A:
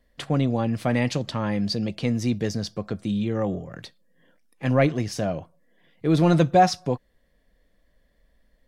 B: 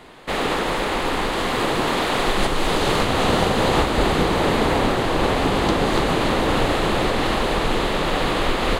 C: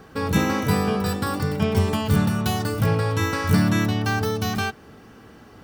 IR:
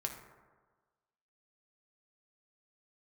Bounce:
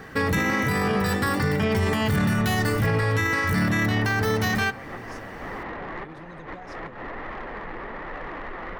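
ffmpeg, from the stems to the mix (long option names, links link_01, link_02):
-filter_complex "[0:a]acompressor=threshold=-29dB:ratio=6,volume=-13.5dB,asplit=2[link_01][link_02];[1:a]lowpass=frequency=1200:width_type=q:width=1.6,asoftclip=type=tanh:threshold=-19dB,flanger=delay=1.4:depth=4.9:regen=69:speed=1.1:shape=triangular,volume=-8.5dB[link_03];[2:a]alimiter=limit=-18dB:level=0:latency=1:release=11,volume=1.5dB,asplit=2[link_04][link_05];[link_05]volume=-11dB[link_06];[link_02]apad=whole_len=387933[link_07];[link_03][link_07]sidechaincompress=threshold=-51dB:ratio=8:attack=16:release=105[link_08];[3:a]atrim=start_sample=2205[link_09];[link_06][link_09]afir=irnorm=-1:irlink=0[link_10];[link_01][link_08][link_04][link_10]amix=inputs=4:normalize=0,equalizer=frequency=1900:width=3.7:gain=13,alimiter=limit=-14dB:level=0:latency=1:release=228"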